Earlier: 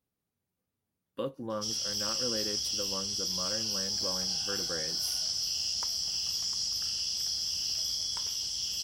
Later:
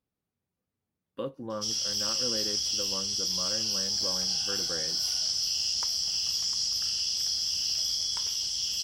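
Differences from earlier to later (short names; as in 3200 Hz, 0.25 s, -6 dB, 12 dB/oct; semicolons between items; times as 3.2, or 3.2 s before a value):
background: add high shelf 2200 Hz +8 dB; master: add high shelf 6000 Hz -8.5 dB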